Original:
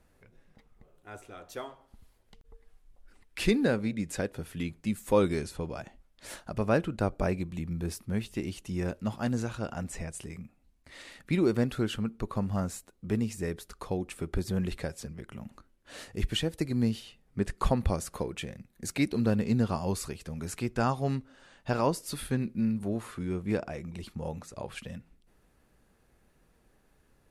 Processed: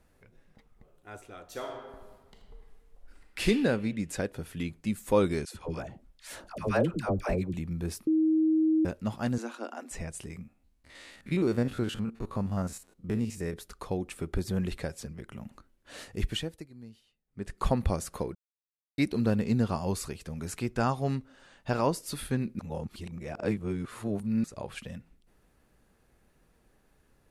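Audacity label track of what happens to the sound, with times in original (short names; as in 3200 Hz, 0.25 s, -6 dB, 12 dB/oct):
1.450000	3.430000	reverb throw, RT60 1.4 s, DRR 0.5 dB
5.450000	7.540000	dispersion lows, late by 0.1 s, half as late at 670 Hz
8.070000	8.850000	bleep 316 Hz -21 dBFS
9.380000	9.910000	rippled Chebyshev high-pass 230 Hz, ripple 3 dB
10.430000	13.540000	stepped spectrum every 50 ms
16.230000	17.720000	dip -20.5 dB, fades 0.45 s
18.350000	18.980000	mute
22.590000	24.440000	reverse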